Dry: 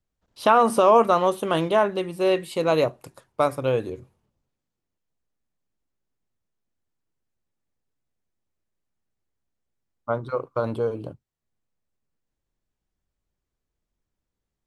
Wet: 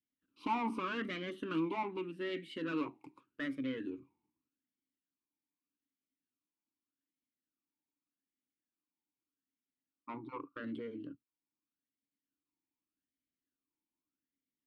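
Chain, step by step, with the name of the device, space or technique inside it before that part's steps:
talk box (tube saturation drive 22 dB, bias 0.55; formant filter swept between two vowels i-u 0.83 Hz)
level +5 dB

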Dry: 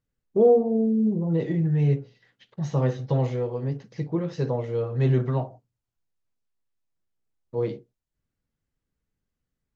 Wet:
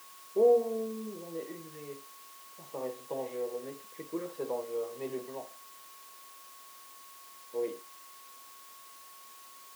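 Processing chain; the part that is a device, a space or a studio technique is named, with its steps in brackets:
shortwave radio (band-pass filter 300–2,700 Hz; amplitude tremolo 0.25 Hz, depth 57%; auto-filter notch saw down 0.47 Hz 740–2,200 Hz; steady tone 1,100 Hz −50 dBFS; white noise bed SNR 18 dB)
high-pass filter 290 Hz 12 dB per octave
level −4 dB

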